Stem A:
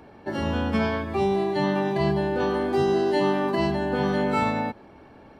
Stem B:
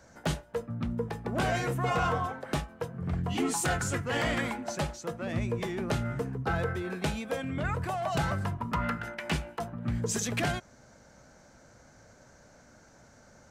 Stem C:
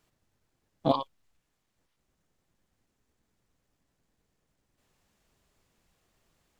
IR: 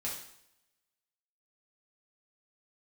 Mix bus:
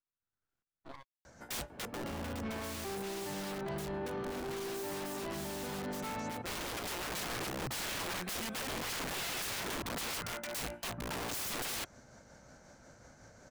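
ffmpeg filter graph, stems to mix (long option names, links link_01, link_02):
-filter_complex "[0:a]highshelf=frequency=4300:gain=-10.5,asoftclip=type=tanh:threshold=-25dB,adelay=1700,volume=-4.5dB[link_01];[1:a]tremolo=f=5.5:d=0.34,aeval=exprs='(mod(50.1*val(0)+1,2)-1)/50.1':channel_layout=same,adelay=1250,volume=0.5dB[link_02];[2:a]equalizer=frequency=1400:width=3.1:gain=13,aeval=exprs='max(val(0),0)':channel_layout=same,aeval=exprs='val(0)*pow(10,-18*if(lt(mod(-1.6*n/s,1),2*abs(-1.6)/1000),1-mod(-1.6*n/s,1)/(2*abs(-1.6)/1000),(mod(-1.6*n/s,1)-2*abs(-1.6)/1000)/(1-2*abs(-1.6)/1000))/20)':channel_layout=same,volume=-11dB[link_03];[link_01][link_02][link_03]amix=inputs=3:normalize=0,alimiter=level_in=9.5dB:limit=-24dB:level=0:latency=1:release=34,volume=-9.5dB"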